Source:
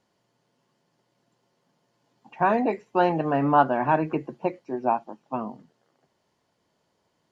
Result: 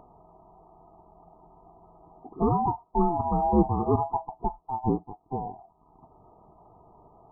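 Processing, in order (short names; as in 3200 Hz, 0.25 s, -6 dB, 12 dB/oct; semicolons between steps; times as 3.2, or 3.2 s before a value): band-swap scrambler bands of 500 Hz; in parallel at +1.5 dB: upward compressor, threshold -26 dBFS; on the sum: brick-wall FIR low-pass 1300 Hz; gain -8.5 dB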